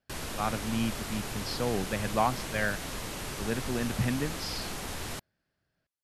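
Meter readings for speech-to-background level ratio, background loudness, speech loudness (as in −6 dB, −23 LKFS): 4.0 dB, −37.0 LKFS, −33.0 LKFS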